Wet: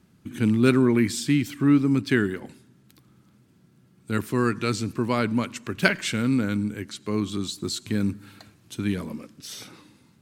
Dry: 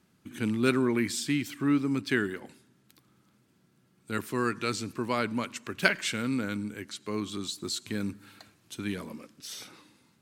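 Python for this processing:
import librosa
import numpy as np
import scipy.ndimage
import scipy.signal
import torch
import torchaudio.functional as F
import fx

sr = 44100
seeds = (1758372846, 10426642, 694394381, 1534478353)

y = fx.low_shelf(x, sr, hz=260.0, db=9.5)
y = F.gain(torch.from_numpy(y), 2.5).numpy()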